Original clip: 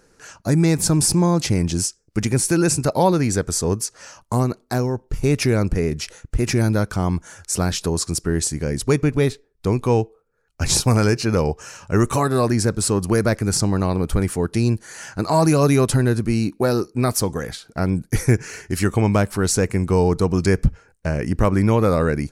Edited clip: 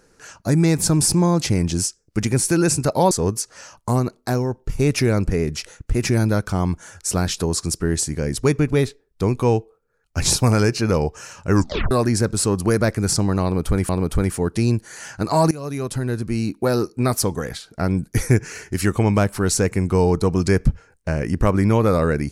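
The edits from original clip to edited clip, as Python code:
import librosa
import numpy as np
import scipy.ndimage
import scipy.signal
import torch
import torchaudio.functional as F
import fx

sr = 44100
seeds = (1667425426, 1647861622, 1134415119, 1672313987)

y = fx.edit(x, sr, fx.cut(start_s=3.11, length_s=0.44),
    fx.tape_stop(start_s=11.97, length_s=0.38),
    fx.repeat(start_s=13.87, length_s=0.46, count=2),
    fx.fade_in_from(start_s=15.49, length_s=1.26, floor_db=-19.0), tone=tone)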